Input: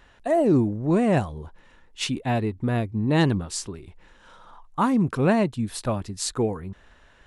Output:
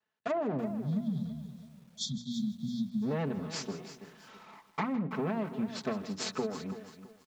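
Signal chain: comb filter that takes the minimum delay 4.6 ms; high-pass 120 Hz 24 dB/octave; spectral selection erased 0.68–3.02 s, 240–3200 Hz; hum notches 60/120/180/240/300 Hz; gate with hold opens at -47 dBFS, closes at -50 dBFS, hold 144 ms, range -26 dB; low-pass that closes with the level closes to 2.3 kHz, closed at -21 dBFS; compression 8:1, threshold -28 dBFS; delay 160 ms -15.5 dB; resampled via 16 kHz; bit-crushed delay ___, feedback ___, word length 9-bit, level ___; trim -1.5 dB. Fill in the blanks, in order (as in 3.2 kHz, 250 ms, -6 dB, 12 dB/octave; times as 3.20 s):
330 ms, 35%, -12 dB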